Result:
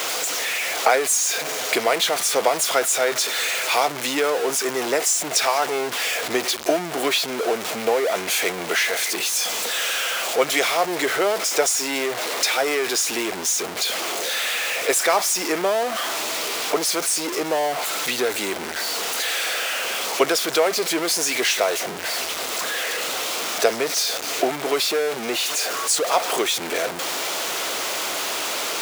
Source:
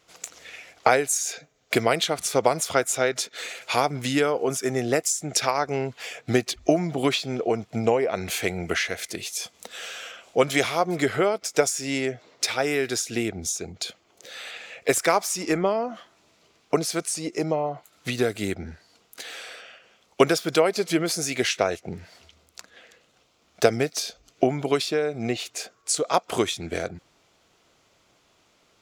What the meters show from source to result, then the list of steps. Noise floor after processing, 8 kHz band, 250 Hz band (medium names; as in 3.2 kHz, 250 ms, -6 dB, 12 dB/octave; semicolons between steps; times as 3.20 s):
-30 dBFS, +7.5 dB, -2.5 dB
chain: jump at every zero crossing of -19.5 dBFS; high-pass 420 Hz 12 dB/octave